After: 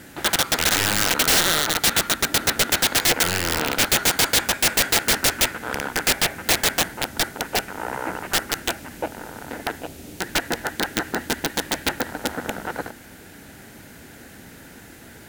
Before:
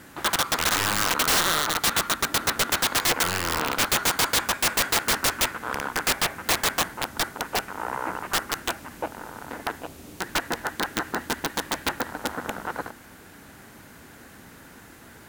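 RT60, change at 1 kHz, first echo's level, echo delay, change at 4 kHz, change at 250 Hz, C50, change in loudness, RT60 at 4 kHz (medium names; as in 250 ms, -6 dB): no reverb, 0.0 dB, no echo, no echo, +4.5 dB, +4.5 dB, no reverb, +4.0 dB, no reverb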